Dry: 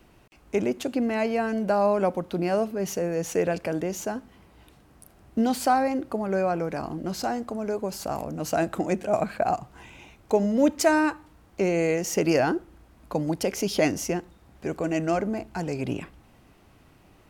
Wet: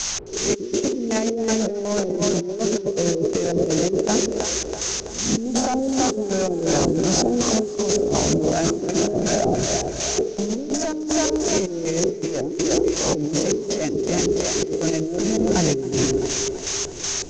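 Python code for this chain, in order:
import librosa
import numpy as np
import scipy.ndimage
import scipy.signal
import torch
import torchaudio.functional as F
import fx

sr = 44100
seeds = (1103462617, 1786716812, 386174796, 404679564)

p1 = fx.spec_swells(x, sr, rise_s=0.42)
p2 = 10.0 ** (-17.5 / 20.0) * np.tanh(p1 / 10.0 ** (-17.5 / 20.0))
p3 = fx.tilt_eq(p2, sr, slope=-2.0)
p4 = fx.dmg_noise_band(p3, sr, seeds[0], low_hz=500.0, high_hz=6800.0, level_db=-41.0)
p5 = fx.filter_lfo_lowpass(p4, sr, shape='square', hz=2.7, low_hz=400.0, high_hz=6400.0, q=6.9)
p6 = p5 + fx.echo_split(p5, sr, split_hz=430.0, low_ms=122, high_ms=330, feedback_pct=52, wet_db=-8.5, dry=0)
p7 = fx.over_compress(p6, sr, threshold_db=-24.0, ratio=-1.0)
p8 = scipy.signal.sosfilt(scipy.signal.butter(4, 9000.0, 'lowpass', fs=sr, output='sos'), p7)
p9 = fx.echo_warbled(p8, sr, ms=267, feedback_pct=71, rate_hz=2.8, cents=90, wet_db=-22)
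y = p9 * 10.0 ** (1.5 / 20.0)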